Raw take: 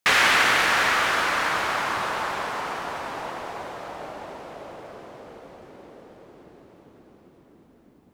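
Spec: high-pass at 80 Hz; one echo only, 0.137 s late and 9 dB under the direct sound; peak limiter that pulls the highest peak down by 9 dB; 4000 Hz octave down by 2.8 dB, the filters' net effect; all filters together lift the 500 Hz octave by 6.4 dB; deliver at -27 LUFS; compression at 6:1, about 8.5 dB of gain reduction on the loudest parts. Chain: HPF 80 Hz; bell 500 Hz +8 dB; bell 4000 Hz -4 dB; compressor 6:1, threshold -24 dBFS; limiter -21 dBFS; echo 0.137 s -9 dB; gain +4 dB

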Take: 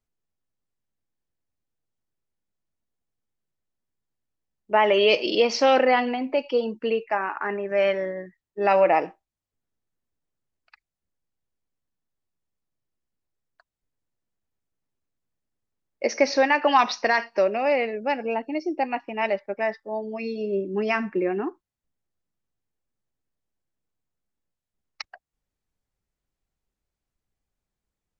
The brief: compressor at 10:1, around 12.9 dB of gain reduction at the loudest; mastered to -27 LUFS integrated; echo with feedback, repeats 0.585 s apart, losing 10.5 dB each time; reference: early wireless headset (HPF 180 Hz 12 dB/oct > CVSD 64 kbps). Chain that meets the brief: compressor 10:1, threshold -27 dBFS; HPF 180 Hz 12 dB/oct; feedback echo 0.585 s, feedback 30%, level -10.5 dB; CVSD 64 kbps; gain +5.5 dB

